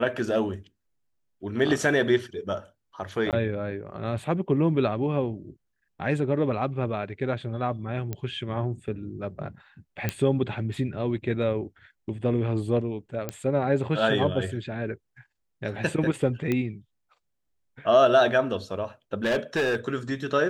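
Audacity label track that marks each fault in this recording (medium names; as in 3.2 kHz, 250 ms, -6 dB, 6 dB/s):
3.310000	3.330000	dropout 18 ms
8.130000	8.130000	pop -18 dBFS
10.090000	10.090000	pop -11 dBFS
13.290000	13.290000	pop -15 dBFS
16.520000	16.520000	pop -14 dBFS
19.240000	19.760000	clipped -20.5 dBFS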